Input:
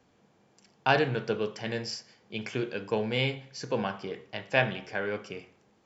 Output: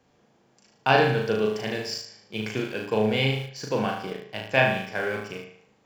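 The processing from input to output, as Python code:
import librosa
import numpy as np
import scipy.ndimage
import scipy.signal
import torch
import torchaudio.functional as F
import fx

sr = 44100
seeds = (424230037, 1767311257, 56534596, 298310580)

p1 = fx.room_flutter(x, sr, wall_m=6.4, rt60_s=0.63)
p2 = np.where(np.abs(p1) >= 10.0 ** (-33.5 / 20.0), p1, 0.0)
y = p1 + (p2 * librosa.db_to_amplitude(-10.5))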